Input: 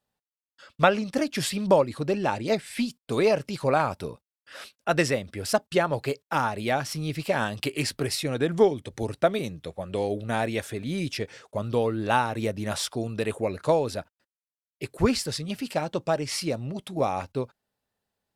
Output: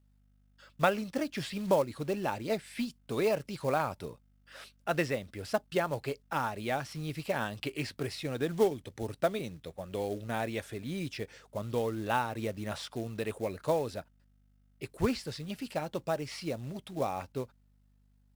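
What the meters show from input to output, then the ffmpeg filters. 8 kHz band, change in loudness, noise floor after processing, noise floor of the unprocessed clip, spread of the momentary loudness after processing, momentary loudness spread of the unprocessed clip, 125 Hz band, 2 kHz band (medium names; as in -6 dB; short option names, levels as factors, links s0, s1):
-11.5 dB, -7.0 dB, -66 dBFS, under -85 dBFS, 11 LU, 11 LU, -7.0 dB, -7.0 dB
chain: -filter_complex "[0:a]acrossover=split=4300[s0][s1];[s1]acompressor=threshold=0.00794:ratio=4:attack=1:release=60[s2];[s0][s2]amix=inputs=2:normalize=0,aeval=exprs='val(0)+0.00126*(sin(2*PI*50*n/s)+sin(2*PI*2*50*n/s)/2+sin(2*PI*3*50*n/s)/3+sin(2*PI*4*50*n/s)/4+sin(2*PI*5*50*n/s)/5)':c=same,acrusher=bits=5:mode=log:mix=0:aa=0.000001,volume=0.447"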